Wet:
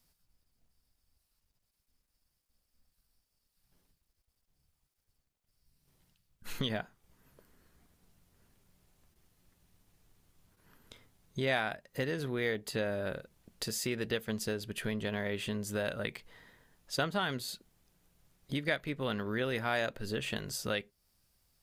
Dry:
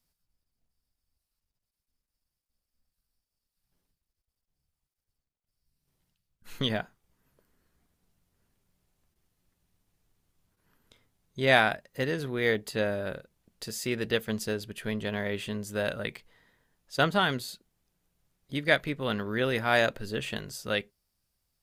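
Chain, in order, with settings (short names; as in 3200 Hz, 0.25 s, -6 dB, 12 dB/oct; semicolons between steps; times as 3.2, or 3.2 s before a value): compressor 2.5:1, threshold -42 dBFS, peak gain reduction 17 dB; gain +6 dB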